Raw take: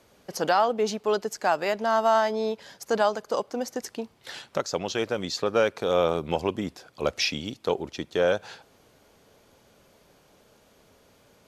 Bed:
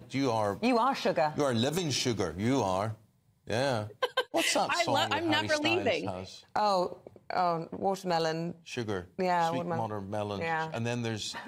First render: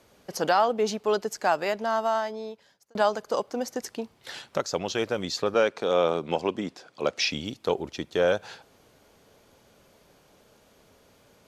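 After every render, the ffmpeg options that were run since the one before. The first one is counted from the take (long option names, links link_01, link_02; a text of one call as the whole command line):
ffmpeg -i in.wav -filter_complex "[0:a]asettb=1/sr,asplit=3[link_01][link_02][link_03];[link_01]atrim=end=5.544[link_04];[link_02]atrim=start=5.54:end=7.31,asetpts=PTS-STARTPTS,afade=type=in:duration=0.004:curve=qsin,afade=type=out:start_time=1.766:duration=0.004:curve=qsin,highpass=170,lowpass=7900[link_05];[link_03]atrim=start=7.306[link_06];[link_04][link_05]acrossfade=duration=0.004:curve1=hsin:curve2=qsin[link_07];[link_07][link_06]acrossfade=duration=0.004:curve1=qsin:curve2=hsin,asplit=2[link_08][link_09];[link_08]atrim=end=2.95,asetpts=PTS-STARTPTS,afade=type=out:start_time=1.52:duration=1.43[link_10];[link_09]atrim=start=2.95,asetpts=PTS-STARTPTS,afade=type=in:duration=0.004:curve=hsin[link_11];[link_10][link_11]concat=n=2:v=0:a=1" out.wav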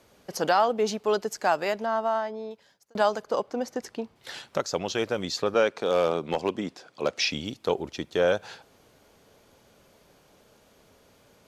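ffmpeg -i in.wav -filter_complex "[0:a]asettb=1/sr,asplit=3[link_01][link_02][link_03];[link_01]atrim=end=1.854[link_04];[link_02]atrim=start=1.85:end=2.51,asetpts=PTS-STARTPTS,afade=type=in:duration=0.004:curve=qsin,afade=type=out:start_time=0.656:duration=0.004:curve=qsin,lowpass=frequency=2000:poles=1[link_05];[link_03]atrim=start=2.506[link_06];[link_04][link_05]acrossfade=duration=0.004:curve1=hsin:curve2=qsin[link_07];[link_07][link_06]acrossfade=duration=0.004:curve1=qsin:curve2=hsin,asettb=1/sr,asplit=3[link_08][link_09][link_10];[link_08]atrim=end=3.244[link_11];[link_09]atrim=start=3.24:end=4.16,asetpts=PTS-STARTPTS,afade=type=in:duration=0.004:curve=qsin,afade=type=out:start_time=0.916:duration=0.004:curve=qsin,aemphasis=mode=reproduction:type=cd[link_12];[link_10]atrim=start=4.156[link_13];[link_11][link_12]acrossfade=duration=0.004:curve1=hsin:curve2=qsin[link_14];[link_14][link_13]acrossfade=duration=0.004:curve1=qsin:curve2=hsin,asettb=1/sr,asplit=3[link_15][link_16][link_17];[link_15]atrim=end=5.704[link_18];[link_16]atrim=start=5.7:end=7.13,asetpts=PTS-STARTPTS,afade=type=in:duration=0.004:curve=qsin,afade=type=out:start_time=1.426:duration=0.004:curve=qsin,asoftclip=type=hard:threshold=-16.5dB[link_19];[link_17]atrim=start=7.126[link_20];[link_18][link_19]acrossfade=duration=0.004:curve1=hsin:curve2=qsin[link_21];[link_21][link_20]acrossfade=duration=0.004:curve1=qsin:curve2=hsin" out.wav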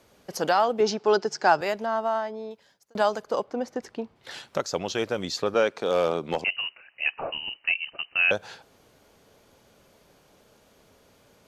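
ffmpeg -i in.wav -filter_complex "[0:a]asettb=1/sr,asplit=3[link_01][link_02][link_03];[link_01]atrim=end=0.804[link_04];[link_02]atrim=start=0.8:end=1.61,asetpts=PTS-STARTPTS,afade=type=in:duration=0.004:curve=qsin,afade=type=out:start_time=0.806:duration=0.004:curve=qsin,highpass=140,equalizer=frequency=150:width_type=q:width=4:gain=10,equalizer=frequency=370:width_type=q:width=4:gain=7,equalizer=frequency=830:width_type=q:width=4:gain=6,equalizer=frequency=1500:width_type=q:width=4:gain=6,equalizer=frequency=5200:width_type=q:width=4:gain=8,lowpass=frequency=6800:width=0.5412,lowpass=frequency=6800:width=1.3066[link_05];[link_03]atrim=start=1.606[link_06];[link_04][link_05]acrossfade=duration=0.004:curve1=hsin:curve2=qsin[link_07];[link_07][link_06]acrossfade=duration=0.004:curve1=qsin:curve2=hsin,asettb=1/sr,asplit=3[link_08][link_09][link_10];[link_08]atrim=end=3.444[link_11];[link_09]atrim=start=3.44:end=4.31,asetpts=PTS-STARTPTS,afade=type=in:duration=0.004:curve=qsin,afade=type=out:start_time=0.866:duration=0.004:curve=qsin,aemphasis=mode=reproduction:type=cd[link_12];[link_10]atrim=start=4.306[link_13];[link_11][link_12]acrossfade=duration=0.004:curve1=hsin:curve2=qsin[link_14];[link_14][link_13]acrossfade=duration=0.004:curve1=qsin:curve2=hsin,asettb=1/sr,asplit=3[link_15][link_16][link_17];[link_15]atrim=end=6.444[link_18];[link_16]atrim=start=6.44:end=8.31,asetpts=PTS-STARTPTS,afade=type=in:duration=0.004:curve=qsin,afade=type=out:start_time=1.866:duration=0.004:curve=qsin,lowpass=frequency=2600:width_type=q:width=0.5098,lowpass=frequency=2600:width_type=q:width=0.6013,lowpass=frequency=2600:width_type=q:width=0.9,lowpass=frequency=2600:width_type=q:width=2.563,afreqshift=-3100[link_19];[link_17]atrim=start=8.306[link_20];[link_18][link_19]acrossfade=duration=0.004:curve1=hsin:curve2=qsin[link_21];[link_21][link_20]acrossfade=duration=0.004:curve1=qsin:curve2=hsin" out.wav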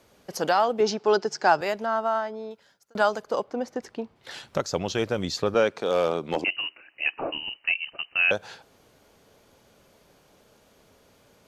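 ffmpeg -i in.wav -filter_complex "[0:a]asettb=1/sr,asplit=3[link_01][link_02][link_03];[link_01]atrim=end=1.824[link_04];[link_02]atrim=start=1.82:end=3.11,asetpts=PTS-STARTPTS,afade=type=in:duration=0.004:curve=qsin,afade=type=out:start_time=1.286:duration=0.004:curve=qsin,equalizer=frequency=1400:width=7.9:gain=9[link_05];[link_03]atrim=start=3.106[link_06];[link_04][link_05]acrossfade=duration=0.004:curve1=hsin:curve2=qsin[link_07];[link_07][link_06]acrossfade=duration=0.004:curve1=qsin:curve2=hsin,asettb=1/sr,asplit=3[link_08][link_09][link_10];[link_08]atrim=end=4.424[link_11];[link_09]atrim=start=4.42:end=5.81,asetpts=PTS-STARTPTS,afade=type=in:duration=0.004:curve=qsin,afade=type=out:start_time=1.386:duration=0.004:curve=qsin,lowshelf=frequency=140:gain=11.5[link_12];[link_10]atrim=start=5.806[link_13];[link_11][link_12]acrossfade=duration=0.004:curve1=hsin:curve2=qsin[link_14];[link_14][link_13]acrossfade=duration=0.004:curve1=qsin:curve2=hsin,asettb=1/sr,asplit=3[link_15][link_16][link_17];[link_15]atrim=end=6.364[link_18];[link_16]atrim=start=6.36:end=7.43,asetpts=PTS-STARTPTS,afade=type=in:duration=0.004:curve=qsin,afade=type=out:start_time=1.066:duration=0.004:curve=qsin,equalizer=frequency=310:width=2.4:gain=13[link_19];[link_17]atrim=start=7.426[link_20];[link_18][link_19]acrossfade=duration=0.004:curve1=hsin:curve2=qsin[link_21];[link_21][link_20]acrossfade=duration=0.004:curve1=qsin:curve2=hsin" out.wav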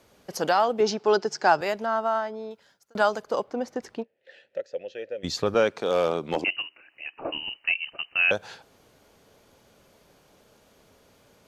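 ffmpeg -i in.wav -filter_complex "[0:a]asplit=3[link_01][link_02][link_03];[link_01]afade=type=out:start_time=4.02:duration=0.02[link_04];[link_02]asplit=3[link_05][link_06][link_07];[link_05]bandpass=frequency=530:width_type=q:width=8,volume=0dB[link_08];[link_06]bandpass=frequency=1840:width_type=q:width=8,volume=-6dB[link_09];[link_07]bandpass=frequency=2480:width_type=q:width=8,volume=-9dB[link_10];[link_08][link_09][link_10]amix=inputs=3:normalize=0,afade=type=in:start_time=4.02:duration=0.02,afade=type=out:start_time=5.23:duration=0.02[link_11];[link_03]afade=type=in:start_time=5.23:duration=0.02[link_12];[link_04][link_11][link_12]amix=inputs=3:normalize=0,asettb=1/sr,asplit=3[link_13][link_14][link_15];[link_13]atrim=end=6.624[link_16];[link_14]atrim=start=6.62:end=7.25,asetpts=PTS-STARTPTS,afade=type=in:duration=0.004:curve=qsin,afade=type=out:start_time=0.626:duration=0.004:curve=qsin,acompressor=threshold=-53dB:ratio=1.5:attack=3.2:release=140:knee=1:detection=peak[link_17];[link_15]atrim=start=7.246[link_18];[link_16][link_17]acrossfade=duration=0.004:curve1=hsin:curve2=qsin[link_19];[link_19][link_18]acrossfade=duration=0.004:curve1=qsin:curve2=hsin" out.wav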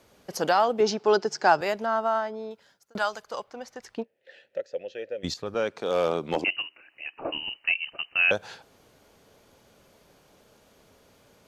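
ffmpeg -i in.wav -filter_complex "[0:a]asettb=1/sr,asplit=3[link_01][link_02][link_03];[link_01]atrim=end=2.984[link_04];[link_02]atrim=start=2.98:end=3.98,asetpts=PTS-STARTPTS,afade=type=in:duration=0.004:curve=qsin,afade=type=out:start_time=0.996:duration=0.004:curve=qsin,equalizer=frequency=280:width_type=o:width=2.7:gain=-13.5[link_05];[link_03]atrim=start=3.976[link_06];[link_04][link_05]acrossfade=duration=0.004:curve1=hsin:curve2=qsin[link_07];[link_07][link_06]acrossfade=duration=0.004:curve1=qsin:curve2=hsin,asplit=2[link_08][link_09];[link_08]atrim=end=5.34,asetpts=PTS-STARTPTS,afade=type=out:start_time=5.336:duration=0.004:curve=hsin:silence=0.251189[link_10];[link_09]atrim=start=5.34,asetpts=PTS-STARTPTS,afade=type=in:duration=0.8:silence=0.251189[link_11];[link_10][link_11]concat=n=2:v=0:a=1" out.wav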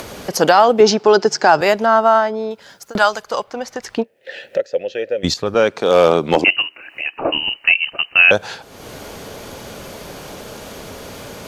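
ffmpeg -i in.wav -af "acompressor=mode=upward:threshold=-34dB:ratio=2.5,alimiter=level_in=13dB:limit=-1dB:release=50:level=0:latency=1" out.wav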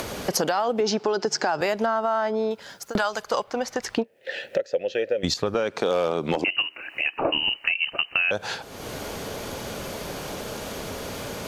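ffmpeg -i in.wav -af "alimiter=limit=-8dB:level=0:latency=1:release=105,acompressor=threshold=-20dB:ratio=6" out.wav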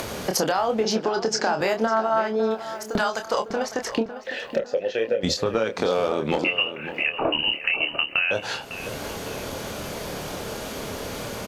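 ffmpeg -i in.wav -filter_complex "[0:a]asplit=2[link_01][link_02];[link_02]adelay=27,volume=-6.5dB[link_03];[link_01][link_03]amix=inputs=2:normalize=0,asplit=2[link_04][link_05];[link_05]adelay=553,lowpass=frequency=2800:poles=1,volume=-11.5dB,asplit=2[link_06][link_07];[link_07]adelay=553,lowpass=frequency=2800:poles=1,volume=0.45,asplit=2[link_08][link_09];[link_09]adelay=553,lowpass=frequency=2800:poles=1,volume=0.45,asplit=2[link_10][link_11];[link_11]adelay=553,lowpass=frequency=2800:poles=1,volume=0.45,asplit=2[link_12][link_13];[link_13]adelay=553,lowpass=frequency=2800:poles=1,volume=0.45[link_14];[link_04][link_06][link_08][link_10][link_12][link_14]amix=inputs=6:normalize=0" out.wav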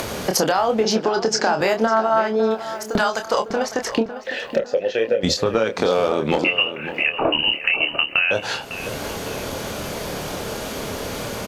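ffmpeg -i in.wav -af "volume=4dB" out.wav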